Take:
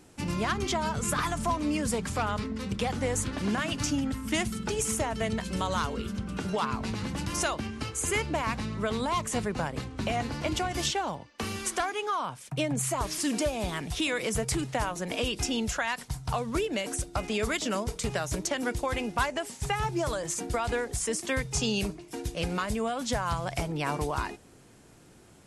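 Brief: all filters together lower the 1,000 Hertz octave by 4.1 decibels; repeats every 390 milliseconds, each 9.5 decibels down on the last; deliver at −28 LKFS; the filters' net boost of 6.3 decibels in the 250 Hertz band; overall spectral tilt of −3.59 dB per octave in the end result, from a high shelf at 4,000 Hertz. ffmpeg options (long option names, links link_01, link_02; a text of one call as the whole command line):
ffmpeg -i in.wav -af "equalizer=frequency=250:width_type=o:gain=8,equalizer=frequency=1000:width_type=o:gain=-6.5,highshelf=frequency=4000:gain=8.5,aecho=1:1:390|780|1170|1560:0.335|0.111|0.0365|0.012,volume=-1.5dB" out.wav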